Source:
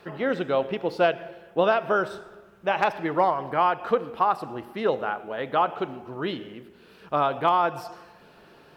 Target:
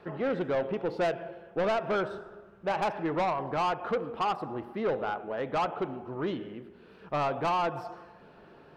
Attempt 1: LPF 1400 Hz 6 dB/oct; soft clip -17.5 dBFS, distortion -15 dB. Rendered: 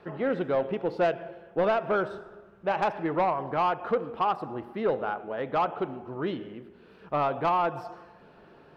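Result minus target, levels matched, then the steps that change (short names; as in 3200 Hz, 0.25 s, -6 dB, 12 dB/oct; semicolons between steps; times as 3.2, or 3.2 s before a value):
soft clip: distortion -6 dB
change: soft clip -23.5 dBFS, distortion -9 dB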